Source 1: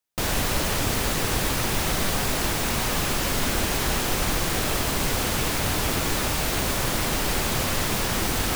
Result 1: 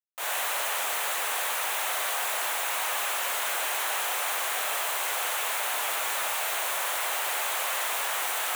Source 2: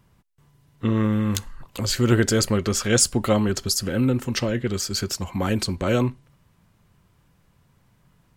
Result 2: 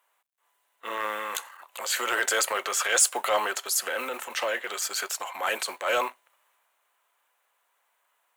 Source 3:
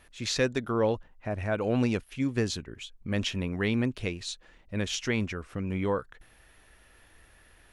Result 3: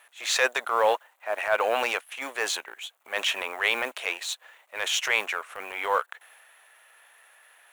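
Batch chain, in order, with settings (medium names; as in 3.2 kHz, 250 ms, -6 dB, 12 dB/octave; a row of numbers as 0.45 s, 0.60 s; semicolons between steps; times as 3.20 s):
companding laws mixed up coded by A; high-pass 650 Hz 24 dB/octave; peaking EQ 5 kHz -10.5 dB 0.58 oct; transient shaper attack -7 dB, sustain +3 dB; in parallel at -9 dB: overload inside the chain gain 27.5 dB; on the sum: normalise loudness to -27 LUFS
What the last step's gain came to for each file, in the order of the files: -2.0 dB, +3.5 dB, +11.0 dB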